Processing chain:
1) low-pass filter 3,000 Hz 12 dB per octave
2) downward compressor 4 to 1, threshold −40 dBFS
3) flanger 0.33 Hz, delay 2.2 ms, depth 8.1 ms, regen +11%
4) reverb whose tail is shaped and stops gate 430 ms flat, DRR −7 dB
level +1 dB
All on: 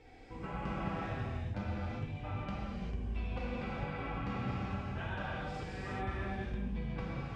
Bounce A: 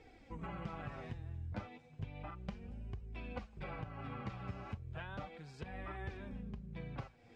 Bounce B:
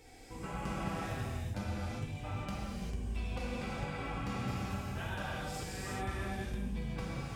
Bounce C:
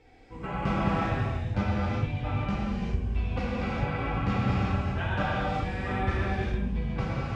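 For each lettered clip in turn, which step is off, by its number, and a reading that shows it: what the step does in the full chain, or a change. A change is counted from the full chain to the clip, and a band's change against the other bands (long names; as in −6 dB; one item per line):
4, change in crest factor +4.5 dB
1, 4 kHz band +4.5 dB
2, average gain reduction 8.0 dB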